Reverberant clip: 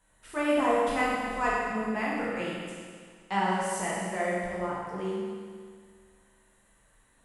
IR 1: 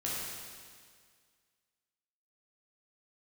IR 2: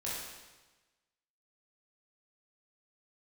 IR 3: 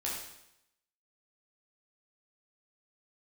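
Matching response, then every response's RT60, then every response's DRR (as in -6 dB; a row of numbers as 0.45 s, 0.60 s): 1; 1.9 s, 1.2 s, 0.80 s; -7.0 dB, -7.5 dB, -5.0 dB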